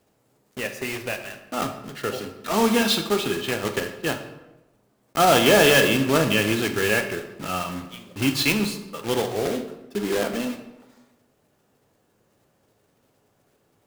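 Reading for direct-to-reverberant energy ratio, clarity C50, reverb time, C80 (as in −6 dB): 5.5 dB, 9.5 dB, 1.0 s, 11.5 dB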